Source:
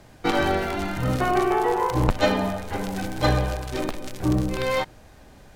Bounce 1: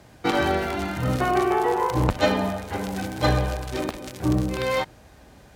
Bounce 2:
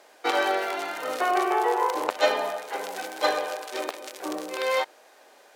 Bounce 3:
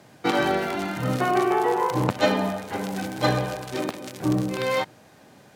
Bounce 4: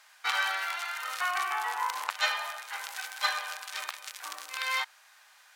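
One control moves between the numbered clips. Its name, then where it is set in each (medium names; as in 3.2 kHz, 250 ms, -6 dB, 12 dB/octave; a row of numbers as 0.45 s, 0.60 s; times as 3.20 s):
high-pass, cutoff frequency: 41 Hz, 420 Hz, 120 Hz, 1.1 kHz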